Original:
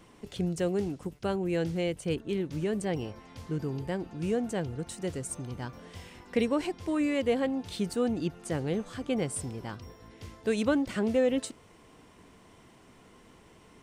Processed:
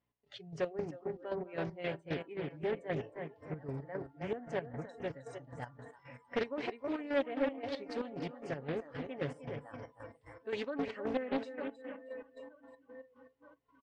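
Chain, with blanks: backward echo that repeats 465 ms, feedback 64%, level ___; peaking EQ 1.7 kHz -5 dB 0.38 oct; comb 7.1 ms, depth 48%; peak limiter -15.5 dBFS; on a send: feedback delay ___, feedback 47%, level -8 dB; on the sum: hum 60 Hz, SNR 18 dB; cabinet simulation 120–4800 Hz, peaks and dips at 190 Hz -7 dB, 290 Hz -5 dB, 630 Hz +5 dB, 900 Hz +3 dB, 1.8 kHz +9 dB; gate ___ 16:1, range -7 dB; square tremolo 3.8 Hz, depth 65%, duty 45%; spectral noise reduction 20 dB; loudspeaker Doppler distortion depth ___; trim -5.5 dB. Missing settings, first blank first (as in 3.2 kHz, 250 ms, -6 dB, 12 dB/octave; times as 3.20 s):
-14 dB, 312 ms, -51 dBFS, 0.4 ms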